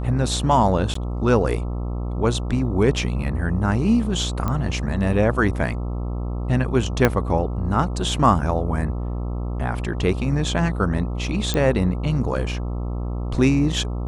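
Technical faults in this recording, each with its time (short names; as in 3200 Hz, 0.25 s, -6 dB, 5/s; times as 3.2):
buzz 60 Hz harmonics 22 -26 dBFS
0.94–0.95 gap 14 ms
4.48 pop -12 dBFS
7.05 pop -3 dBFS
11.54 pop -9 dBFS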